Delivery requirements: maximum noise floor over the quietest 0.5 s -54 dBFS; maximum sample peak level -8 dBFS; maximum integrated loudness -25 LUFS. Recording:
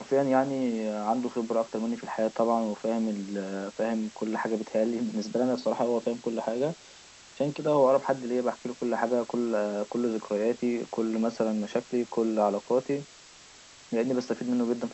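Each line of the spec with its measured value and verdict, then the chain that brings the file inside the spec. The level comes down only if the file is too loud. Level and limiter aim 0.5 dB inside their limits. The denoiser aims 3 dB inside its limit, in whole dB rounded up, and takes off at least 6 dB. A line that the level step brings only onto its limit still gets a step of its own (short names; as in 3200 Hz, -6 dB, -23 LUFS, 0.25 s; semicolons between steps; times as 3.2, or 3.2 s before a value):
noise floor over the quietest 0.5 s -52 dBFS: fail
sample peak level -11.0 dBFS: OK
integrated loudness -29.0 LUFS: OK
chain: denoiser 6 dB, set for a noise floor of -52 dBFS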